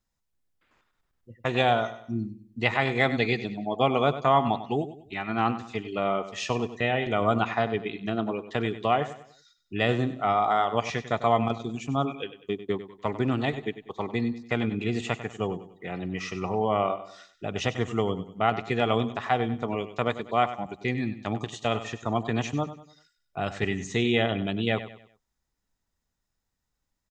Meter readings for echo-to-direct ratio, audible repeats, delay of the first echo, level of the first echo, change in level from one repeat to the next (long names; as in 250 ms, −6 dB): −12.5 dB, 3, 97 ms, −13.0 dB, −8.5 dB